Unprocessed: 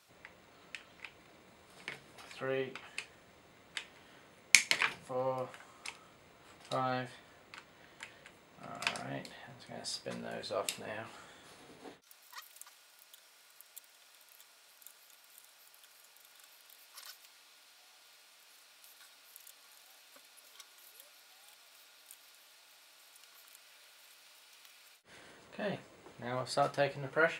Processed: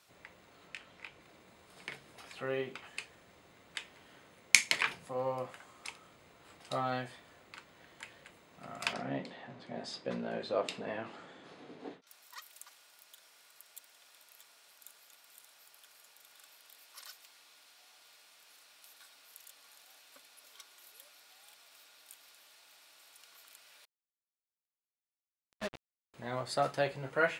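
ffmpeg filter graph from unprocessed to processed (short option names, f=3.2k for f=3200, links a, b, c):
-filter_complex "[0:a]asettb=1/sr,asplit=3[a][b][c];[a]atrim=end=0.674[d];[b]atrim=start=0.67:end=1.22,asetpts=PTS-STARTPTS,afade=t=in:d=0.004:c=qsin,afade=t=out:st=0.546:d=0.004:c=qsin,highshelf=f=5.9k:g=-4.5,asplit=2[e][f];[f]adelay=21,volume=-7dB[g];[e][g]amix=inputs=2:normalize=0,atrim=end_sample=24255[h];[c]atrim=start=1.216[i];[d][h]acrossfade=d=0.004:c1=hsin:c2=qsin[j];[j][i]acrossfade=d=0.004:c1=qsin:c2=hsin,asettb=1/sr,asplit=3[k][l][m];[k]atrim=end=8.934[n];[l]atrim=start=8.93:end=12.07,asetpts=PTS-STARTPTS,afade=t=in:d=0.004:c=qsin,afade=t=out:st=3.136:d=0.004:c=qsin,highpass=210,lowpass=4.6k,lowshelf=f=480:g=11[o];[m]atrim=start=12.066[p];[n][o]acrossfade=d=0.004:c1=hsin:c2=qsin[q];[q][p]acrossfade=d=0.004:c1=qsin:c2=hsin,asettb=1/sr,asplit=3[r][s][t];[r]atrim=end=23.854[u];[s]atrim=start=23.85:end=26.14,asetpts=PTS-STARTPTS,afade=t=in:d=0.004:c=qsin,afade=t=out:st=2.286:d=0.004:c=qsin,tremolo=f=7.8:d=0.9,acrusher=bits=5:mix=0:aa=0.5[v];[t]atrim=start=26.136[w];[u][v]acrossfade=d=0.004:c1=hsin:c2=qsin[x];[x][w]acrossfade=d=0.004:c1=qsin:c2=hsin"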